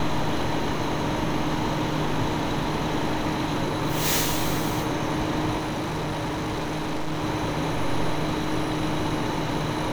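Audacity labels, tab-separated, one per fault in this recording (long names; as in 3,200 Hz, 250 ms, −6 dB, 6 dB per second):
5.570000	7.250000	clipping −24.5 dBFS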